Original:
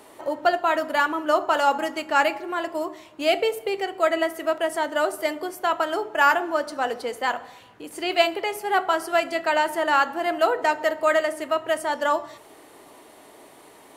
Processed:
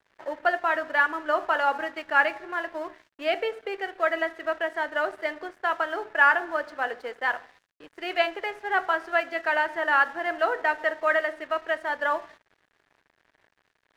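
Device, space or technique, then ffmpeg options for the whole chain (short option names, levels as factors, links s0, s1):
pocket radio on a weak battery: -af "highpass=320,lowpass=3200,aeval=exprs='sgn(val(0))*max(abs(val(0))-0.00531,0)':c=same,equalizer=f=1700:t=o:w=0.48:g=9,volume=0.596"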